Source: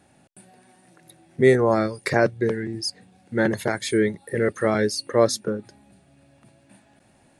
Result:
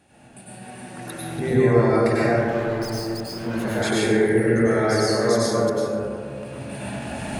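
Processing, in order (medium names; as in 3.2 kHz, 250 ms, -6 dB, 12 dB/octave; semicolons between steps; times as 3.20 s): chunks repeated in reverse 178 ms, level -9 dB; recorder AGC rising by 12 dB/s; peaking EQ 2.7 kHz +5 dB 0.43 oct; in parallel at +0.5 dB: compression, threshold -29 dBFS, peak gain reduction 17 dB; on the sum: peak limiter -11.5 dBFS, peak gain reduction 9.5 dB; 2.34–3.64 s: hard clipper -27.5 dBFS, distortion -9 dB; on a send: band-passed feedback delay 148 ms, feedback 73%, band-pass 750 Hz, level -10 dB; on the sum: plate-style reverb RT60 2.1 s, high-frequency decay 0.3×, pre-delay 85 ms, DRR -8.5 dB; trim -8 dB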